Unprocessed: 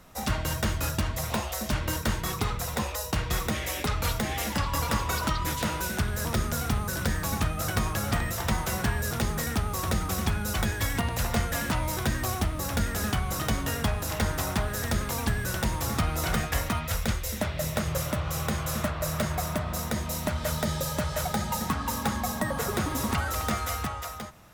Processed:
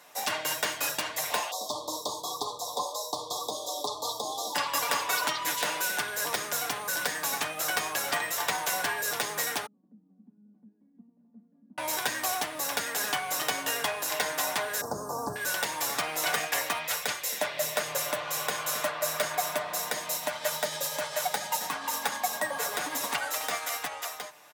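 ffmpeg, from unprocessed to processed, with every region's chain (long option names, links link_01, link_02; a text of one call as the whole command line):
ffmpeg -i in.wav -filter_complex "[0:a]asettb=1/sr,asplit=3[link_01][link_02][link_03];[link_01]atrim=end=1.514[link_04];[link_02]atrim=start=1.51:end=4.55,asetpts=PTS-STARTPTS,afade=type=in:duration=0.004:curve=qsin,afade=type=out:start_time=3.036:duration=0.004:curve=qsin,acrossover=split=6900[link_05][link_06];[link_06]acompressor=threshold=-47dB:ratio=4:attack=1:release=60[link_07];[link_05][link_07]amix=inputs=2:normalize=0,asuperstop=centerf=2000:order=20:qfactor=0.88,equalizer=frequency=170:width=4.3:gain=-9.5[link_08];[link_03]atrim=start=4.546[link_09];[link_04][link_08]acrossfade=duration=0.004:curve1=hsin:curve2=qsin[link_10];[link_10][link_09]acrossfade=duration=0.004:curve1=qsin:curve2=hsin,asettb=1/sr,asplit=3[link_11][link_12][link_13];[link_11]atrim=end=9.664[link_14];[link_12]atrim=start=9.66:end=11.78,asetpts=PTS-STARTPTS,afade=type=in:duration=0.004:curve=qsin,afade=type=out:start_time=2.116:duration=0.004:curve=qsin,asuperpass=centerf=220:order=4:qfactor=5,acompressor=mode=upward:threshold=-55dB:ratio=2.5:attack=3.2:release=140:knee=2.83:detection=peak[link_15];[link_13]atrim=start=11.776[link_16];[link_14][link_15]acrossfade=duration=0.004:curve1=hsin:curve2=qsin[link_17];[link_17][link_16]acrossfade=duration=0.004:curve1=qsin:curve2=hsin,asettb=1/sr,asplit=3[link_18][link_19][link_20];[link_18]atrim=end=14.814[link_21];[link_19]atrim=start=14.81:end=15.36,asetpts=PTS-STARTPTS,afade=type=in:duration=0.004:curve=qsin,afade=type=out:start_time=0.546:duration=0.004:curve=qsin,acrossover=split=4500[link_22][link_23];[link_23]acompressor=threshold=-48dB:ratio=4:attack=1:release=60[link_24];[link_22][link_24]amix=inputs=2:normalize=0,asuperstop=centerf=2600:order=8:qfactor=0.62,lowshelf=frequency=300:gain=11[link_25];[link_20]atrim=start=15.356[link_26];[link_21][link_25]acrossfade=duration=0.004:curve1=hsin:curve2=qsin[link_27];[link_27][link_26]acrossfade=duration=0.004:curve1=qsin:curve2=hsin,asettb=1/sr,asplit=3[link_28][link_29][link_30];[link_28]atrim=end=20.154[link_31];[link_29]atrim=start=20.15:end=23.92,asetpts=PTS-STARTPTS,afade=type=in:duration=0.004:curve=qsin,afade=type=out:start_time=3.766:duration=0.004:curve=qsin,tremolo=f=10:d=0.31,bandreject=frequency=390:width=6.4[link_32];[link_30]atrim=start=23.916[link_33];[link_31][link_32]acrossfade=duration=0.004:curve1=hsin:curve2=qsin[link_34];[link_34][link_33]acrossfade=duration=0.004:curve1=qsin:curve2=hsin,highpass=590,bandreject=frequency=1300:width=9.5,aecho=1:1:6.8:0.51,volume=2.5dB" out.wav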